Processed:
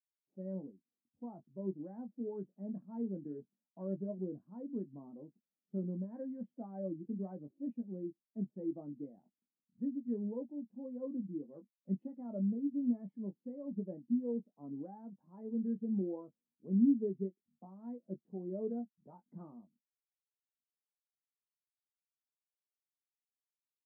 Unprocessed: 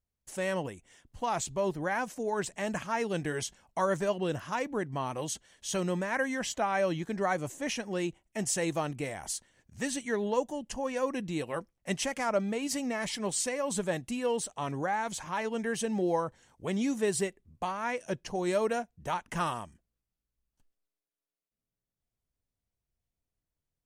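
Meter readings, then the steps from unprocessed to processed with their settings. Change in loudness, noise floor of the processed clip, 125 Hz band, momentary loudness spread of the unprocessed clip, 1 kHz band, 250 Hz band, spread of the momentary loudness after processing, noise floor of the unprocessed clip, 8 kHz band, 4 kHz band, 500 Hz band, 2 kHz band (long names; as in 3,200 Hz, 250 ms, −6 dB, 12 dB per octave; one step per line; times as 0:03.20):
−7.5 dB, below −85 dBFS, −6.0 dB, 7 LU, −26.0 dB, −1.5 dB, 16 LU, below −85 dBFS, below −40 dB, below −40 dB, −12.5 dB, below −40 dB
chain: four-pole ladder band-pass 260 Hz, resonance 50%
double-tracking delay 21 ms −7 dB
every bin expanded away from the loudest bin 1.5 to 1
level +8 dB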